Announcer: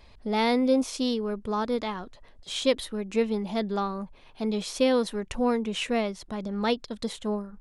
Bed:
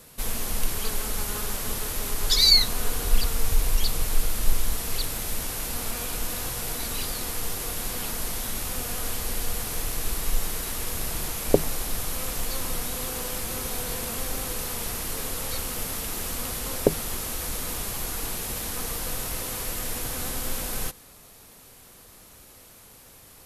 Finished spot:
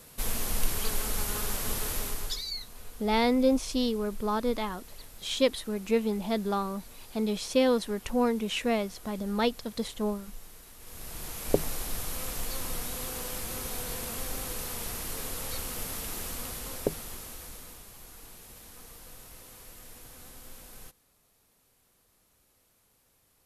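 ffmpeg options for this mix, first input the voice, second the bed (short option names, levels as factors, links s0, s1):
-filter_complex "[0:a]adelay=2750,volume=0.891[s0];[1:a]volume=4.47,afade=t=out:st=1.94:d=0.49:silence=0.125893,afade=t=in:st=10.79:d=0.83:silence=0.177828,afade=t=out:st=16.13:d=1.71:silence=0.223872[s1];[s0][s1]amix=inputs=2:normalize=0"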